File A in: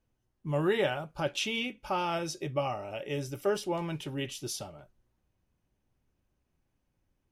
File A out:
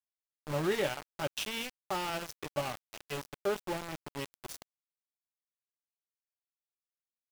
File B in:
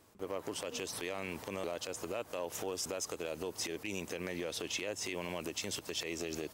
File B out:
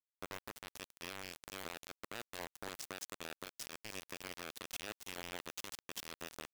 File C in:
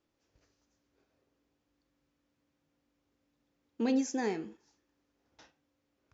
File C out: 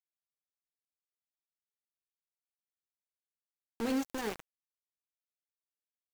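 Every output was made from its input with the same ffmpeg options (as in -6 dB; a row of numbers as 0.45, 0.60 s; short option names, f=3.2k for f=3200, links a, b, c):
-af "aeval=exprs='val(0)*gte(abs(val(0)),0.0299)':c=same,volume=-3dB"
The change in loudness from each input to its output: -3.5, -8.0, -3.0 LU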